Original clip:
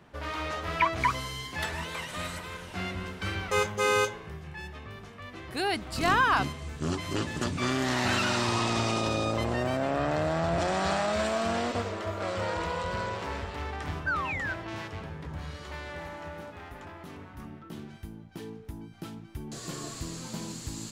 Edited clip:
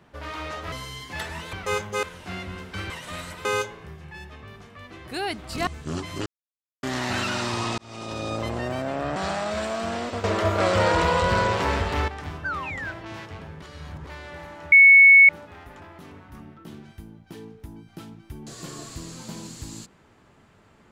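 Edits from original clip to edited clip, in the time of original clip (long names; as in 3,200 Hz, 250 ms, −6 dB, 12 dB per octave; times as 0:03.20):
0:00.72–0:01.15: remove
0:01.96–0:02.51: swap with 0:03.38–0:03.88
0:06.10–0:06.62: remove
0:07.21–0:07.78: silence
0:08.73–0:09.30: fade in
0:10.11–0:10.78: remove
0:11.86–0:13.70: clip gain +11 dB
0:15.24–0:15.69: reverse
0:16.34: insert tone 2,210 Hz −8 dBFS 0.57 s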